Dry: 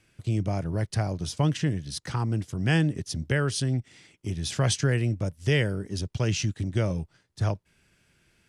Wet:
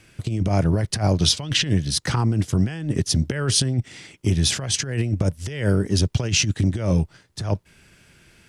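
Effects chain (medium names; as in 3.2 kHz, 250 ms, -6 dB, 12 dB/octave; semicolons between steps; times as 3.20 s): 1.19–1.72 s: peaking EQ 3.6 kHz +10 dB 1.3 oct; compressor with a negative ratio -28 dBFS, ratio -0.5; trim +8.5 dB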